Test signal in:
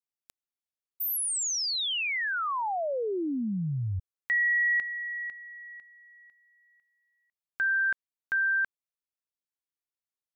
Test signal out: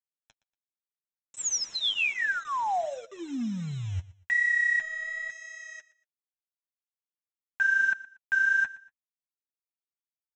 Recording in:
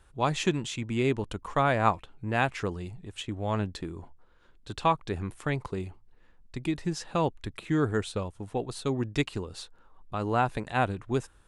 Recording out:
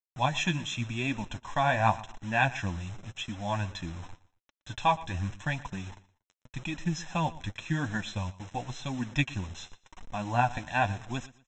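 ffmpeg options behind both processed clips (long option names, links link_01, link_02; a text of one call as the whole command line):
ffmpeg -i in.wav -af "equalizer=frequency=2800:width=0.73:gain=4.5,aecho=1:1:1.2:0.97,aresample=16000,acrusher=bits=6:mix=0:aa=0.000001,aresample=44100,flanger=delay=3.4:depth=9.6:regen=28:speed=0.89:shape=triangular,asuperstop=centerf=4600:order=20:qfactor=4.8,aecho=1:1:118|236:0.112|0.0314,volume=-1.5dB" out.wav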